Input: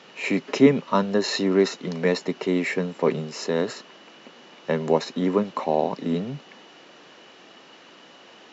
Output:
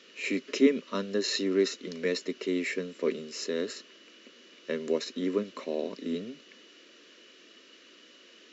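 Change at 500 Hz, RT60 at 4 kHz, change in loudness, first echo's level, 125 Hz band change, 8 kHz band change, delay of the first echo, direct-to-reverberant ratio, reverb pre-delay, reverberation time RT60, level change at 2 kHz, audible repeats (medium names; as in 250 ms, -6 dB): -7.0 dB, no reverb, -7.0 dB, no echo, -15.0 dB, no reading, no echo, no reverb, no reverb, no reverb, -6.0 dB, no echo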